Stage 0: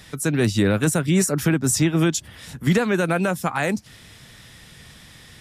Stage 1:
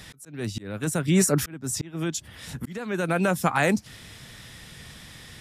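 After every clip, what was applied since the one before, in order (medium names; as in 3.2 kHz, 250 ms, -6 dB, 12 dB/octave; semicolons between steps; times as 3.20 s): slow attack 765 ms; trim +1 dB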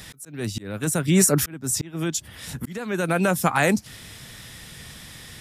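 treble shelf 8.8 kHz +7.5 dB; trim +2 dB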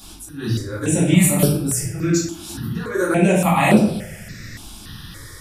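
simulated room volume 210 m³, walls mixed, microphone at 2.3 m; stepped phaser 3.5 Hz 510–6600 Hz; trim -1 dB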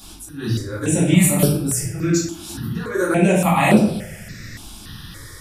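no audible change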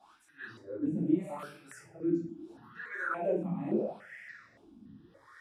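in parallel at +2.5 dB: peak limiter -12 dBFS, peak gain reduction 10.5 dB; on the sum: wah-wah 0.77 Hz 230–2000 Hz, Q 6; trim -9 dB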